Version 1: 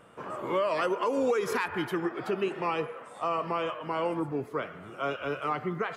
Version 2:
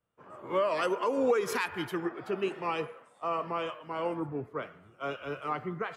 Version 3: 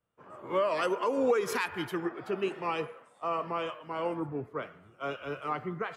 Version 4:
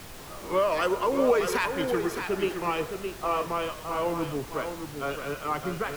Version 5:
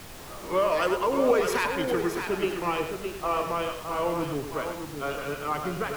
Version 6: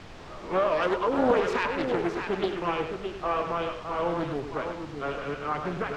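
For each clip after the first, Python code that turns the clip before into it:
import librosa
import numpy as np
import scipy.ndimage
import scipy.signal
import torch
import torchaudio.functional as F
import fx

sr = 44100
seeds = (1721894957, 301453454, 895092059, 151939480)

y1 = fx.band_widen(x, sr, depth_pct=100)
y1 = y1 * 10.0 ** (-2.0 / 20.0)
y2 = y1
y3 = y2 + 10.0 ** (-7.0 / 20.0) * np.pad(y2, (int(616 * sr / 1000.0), 0))[:len(y2)]
y3 = fx.dmg_noise_colour(y3, sr, seeds[0], colour='pink', level_db=-47.0)
y3 = y3 * 10.0 ** (3.5 / 20.0)
y4 = y3 + 10.0 ** (-8.0 / 20.0) * np.pad(y3, (int(101 * sr / 1000.0), 0))[:len(y3)]
y5 = fx.air_absorb(y4, sr, metres=140.0)
y5 = fx.doppler_dist(y5, sr, depth_ms=0.45)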